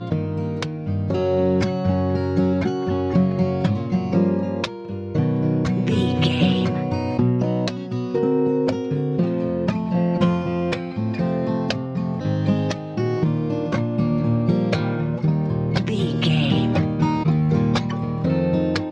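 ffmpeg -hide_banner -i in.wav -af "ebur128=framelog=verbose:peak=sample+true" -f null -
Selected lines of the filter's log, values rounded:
Integrated loudness:
  I:         -21.6 LUFS
  Threshold: -31.6 LUFS
Loudness range:
  LRA:         2.1 LU
  Threshold: -41.6 LUFS
  LRA low:   -22.8 LUFS
  LRA high:  -20.7 LUFS
Sample peak:
  Peak:       -6.7 dBFS
True peak:
  Peak:       -6.7 dBFS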